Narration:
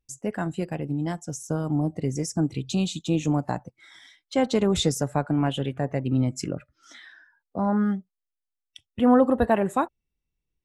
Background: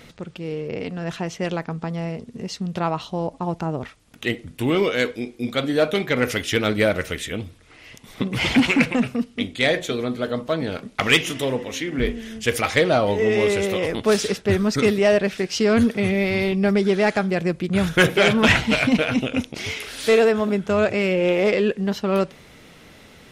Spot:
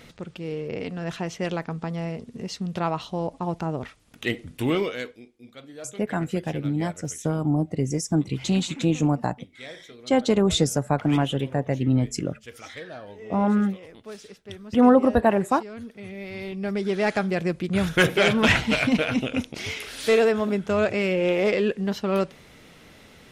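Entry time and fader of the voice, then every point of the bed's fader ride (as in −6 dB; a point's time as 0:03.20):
5.75 s, +2.0 dB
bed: 0:04.72 −2.5 dB
0:05.33 −21.5 dB
0:15.79 −21.5 dB
0:17.14 −3 dB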